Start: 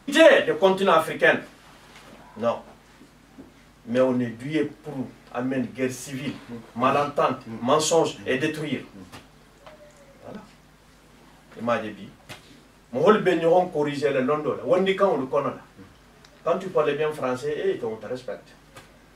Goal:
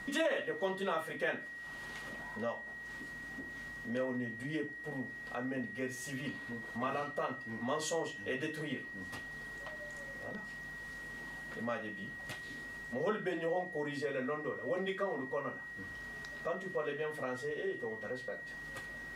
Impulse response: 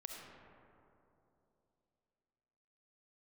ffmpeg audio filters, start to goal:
-af "acompressor=threshold=-47dB:ratio=2,aeval=exprs='val(0)+0.00631*sin(2*PI*1900*n/s)':c=same"

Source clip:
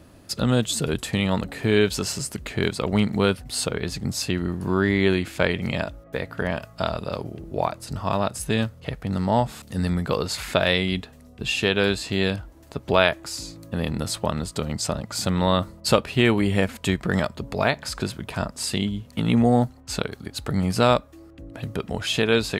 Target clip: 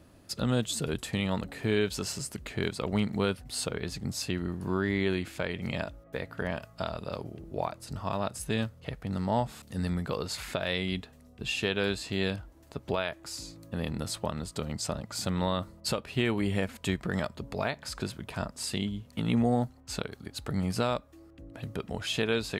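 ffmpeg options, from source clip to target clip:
-af "alimiter=limit=-10dB:level=0:latency=1:release=224,volume=-7dB"

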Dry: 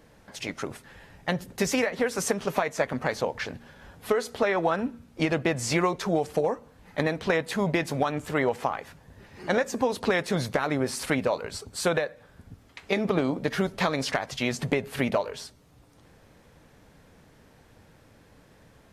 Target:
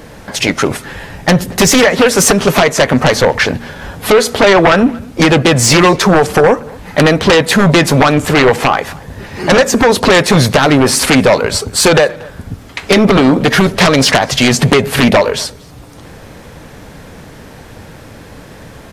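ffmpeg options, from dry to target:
-filter_complex "[0:a]aeval=exprs='0.316*sin(PI/2*3.55*val(0)/0.316)':c=same,asplit=2[a][b];[b]adelay=233.2,volume=-24dB,highshelf=f=4k:g=-5.25[c];[a][c]amix=inputs=2:normalize=0,volume=7dB"

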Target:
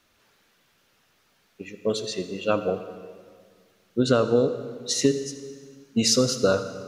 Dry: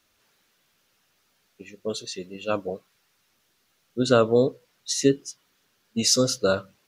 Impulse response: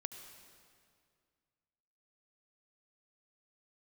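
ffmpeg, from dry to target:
-filter_complex "[0:a]highshelf=f=4k:g=-6.5,acompressor=threshold=-22dB:ratio=4,asplit=2[a][b];[1:a]atrim=start_sample=2205,asetrate=52920,aresample=44100[c];[b][c]afir=irnorm=-1:irlink=0,volume=9dB[d];[a][d]amix=inputs=2:normalize=0,volume=-3dB"

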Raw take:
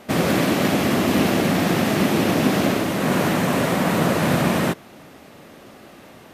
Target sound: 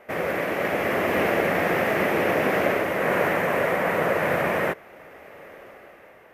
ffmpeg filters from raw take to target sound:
-af "equalizer=f=125:t=o:w=1:g=-6,equalizer=f=250:t=o:w=1:g=-9,equalizer=f=500:t=o:w=1:g=8,equalizer=f=2k:t=o:w=1:g=10,equalizer=f=4k:t=o:w=1:g=-11,equalizer=f=8k:t=o:w=1:g=-9,dynaudnorm=f=120:g=13:m=11dB,volume=-8.5dB"

